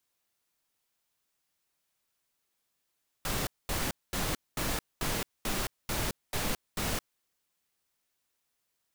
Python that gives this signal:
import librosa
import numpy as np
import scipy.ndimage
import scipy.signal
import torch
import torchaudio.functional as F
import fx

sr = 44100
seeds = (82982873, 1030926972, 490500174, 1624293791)

y = fx.noise_burst(sr, seeds[0], colour='pink', on_s=0.22, off_s=0.22, bursts=9, level_db=-31.5)